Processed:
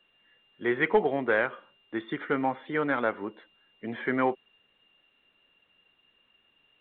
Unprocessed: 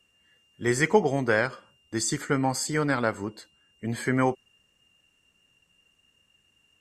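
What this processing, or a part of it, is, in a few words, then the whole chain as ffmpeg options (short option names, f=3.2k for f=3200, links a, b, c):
telephone: -af "highpass=270,lowpass=3.4k,asoftclip=type=tanh:threshold=-11.5dB" -ar 8000 -c:a pcm_alaw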